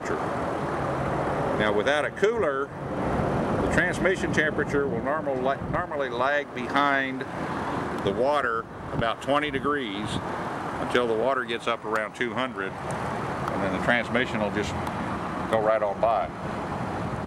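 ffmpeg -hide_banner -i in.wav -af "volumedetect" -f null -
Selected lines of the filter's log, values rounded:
mean_volume: -26.4 dB
max_volume: -8.1 dB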